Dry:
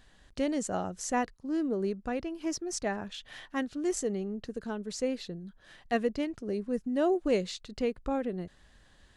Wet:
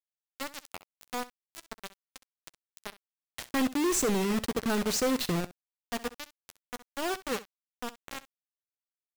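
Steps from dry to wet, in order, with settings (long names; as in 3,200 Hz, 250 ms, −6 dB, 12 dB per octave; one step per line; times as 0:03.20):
0:03.38–0:05.45: leveller curve on the samples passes 5
bit reduction 4 bits
ambience of single reflections 12 ms −16.5 dB, 65 ms −17 dB
level −8 dB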